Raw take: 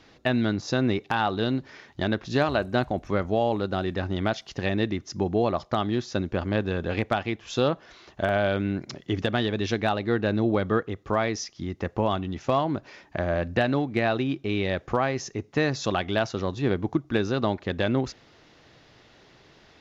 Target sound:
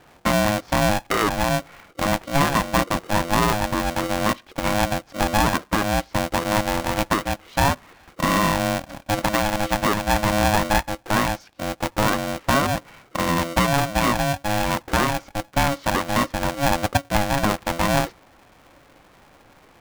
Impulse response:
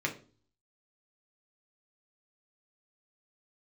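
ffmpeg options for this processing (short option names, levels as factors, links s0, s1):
-af "lowpass=1700,aeval=exprs='val(0)*sgn(sin(2*PI*420*n/s))':c=same,volume=1.68"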